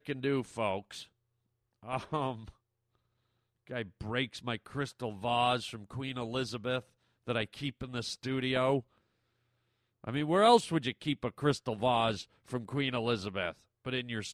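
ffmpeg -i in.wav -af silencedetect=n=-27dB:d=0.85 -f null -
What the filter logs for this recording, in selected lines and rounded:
silence_start: 0.77
silence_end: 1.92 | silence_duration: 1.15
silence_start: 2.31
silence_end: 3.77 | silence_duration: 1.46
silence_start: 8.78
silence_end: 10.09 | silence_duration: 1.31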